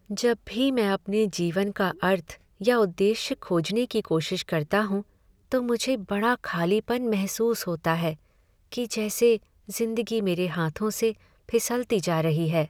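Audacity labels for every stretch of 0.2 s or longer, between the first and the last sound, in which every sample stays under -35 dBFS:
2.340000	2.610000	silence
5.010000	5.520000	silence
8.140000	8.720000	silence
9.370000	9.690000	silence
11.120000	11.490000	silence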